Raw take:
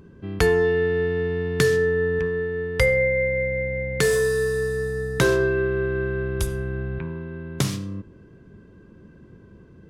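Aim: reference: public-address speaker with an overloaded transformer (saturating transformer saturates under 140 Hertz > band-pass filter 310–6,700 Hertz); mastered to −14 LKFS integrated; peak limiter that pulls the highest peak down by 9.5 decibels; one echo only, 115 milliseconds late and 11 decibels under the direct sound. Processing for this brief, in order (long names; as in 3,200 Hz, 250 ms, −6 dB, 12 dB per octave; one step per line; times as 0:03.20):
brickwall limiter −14.5 dBFS
single-tap delay 115 ms −11 dB
saturating transformer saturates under 140 Hz
band-pass filter 310–6,700 Hz
level +12.5 dB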